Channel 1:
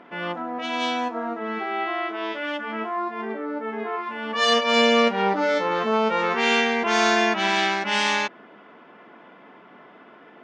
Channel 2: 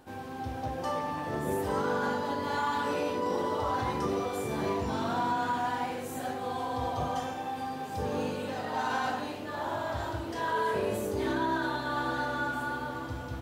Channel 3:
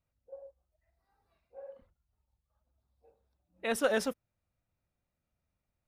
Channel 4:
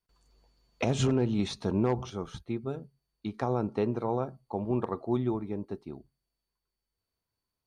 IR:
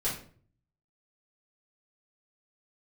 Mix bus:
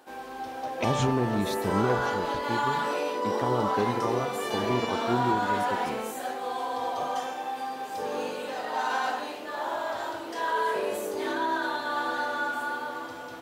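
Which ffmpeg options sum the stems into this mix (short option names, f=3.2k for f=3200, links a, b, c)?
-filter_complex "[0:a]acompressor=threshold=-30dB:ratio=2,adelay=50,volume=-8.5dB[a];[1:a]highpass=390,volume=3dB[b];[2:a]adelay=1850,volume=-10dB[c];[3:a]volume=0dB,asplit=2[d][e];[e]apad=whole_len=462465[f];[a][f]sidechaingate=range=-33dB:threshold=-57dB:ratio=16:detection=peak[g];[g][b][c][d]amix=inputs=4:normalize=0"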